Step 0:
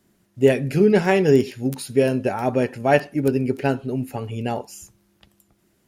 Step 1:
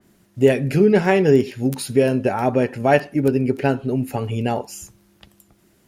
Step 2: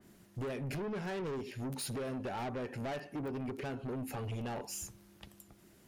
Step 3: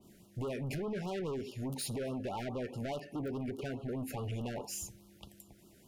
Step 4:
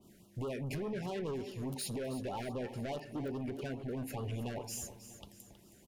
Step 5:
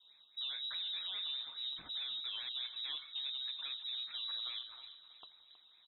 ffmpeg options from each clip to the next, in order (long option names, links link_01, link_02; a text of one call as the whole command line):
ffmpeg -i in.wav -filter_complex "[0:a]asplit=2[link_01][link_02];[link_02]acompressor=threshold=-26dB:ratio=6,volume=2dB[link_03];[link_01][link_03]amix=inputs=2:normalize=0,adynamicequalizer=threshold=0.0141:dfrequency=3300:dqfactor=0.7:tfrequency=3300:tqfactor=0.7:attack=5:release=100:ratio=0.375:range=2.5:mode=cutabove:tftype=highshelf,volume=-1dB" out.wav
ffmpeg -i in.wav -af "acompressor=threshold=-25dB:ratio=5,asoftclip=type=tanh:threshold=-32dB,volume=-3.5dB" out.wav
ffmpeg -i in.wav -af "afftfilt=real='re*(1-between(b*sr/1024,930*pow(2000/930,0.5+0.5*sin(2*PI*4.8*pts/sr))/1.41,930*pow(2000/930,0.5+0.5*sin(2*PI*4.8*pts/sr))*1.41))':imag='im*(1-between(b*sr/1024,930*pow(2000/930,0.5+0.5*sin(2*PI*4.8*pts/sr))/1.41,930*pow(2000/930,0.5+0.5*sin(2*PI*4.8*pts/sr))*1.41))':win_size=1024:overlap=0.75,volume=1dB" out.wav
ffmpeg -i in.wav -af "aecho=1:1:319|638|957|1276:0.224|0.0963|0.0414|0.0178,volume=-1dB" out.wav
ffmpeg -i in.wav -af "lowpass=frequency=3400:width_type=q:width=0.5098,lowpass=frequency=3400:width_type=q:width=0.6013,lowpass=frequency=3400:width_type=q:width=0.9,lowpass=frequency=3400:width_type=q:width=2.563,afreqshift=-4000,volume=-3dB" out.wav